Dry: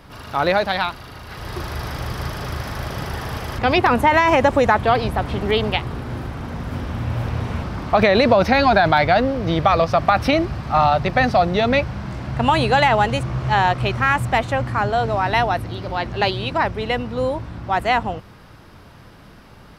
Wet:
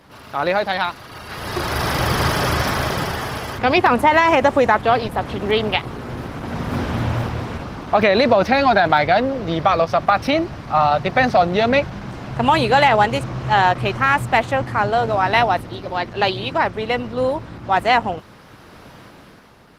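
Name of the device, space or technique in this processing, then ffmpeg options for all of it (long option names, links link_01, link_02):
video call: -af "highpass=frequency=170:poles=1,dynaudnorm=framelen=150:gausssize=11:maxgain=13dB,volume=-1dB" -ar 48000 -c:a libopus -b:a 16k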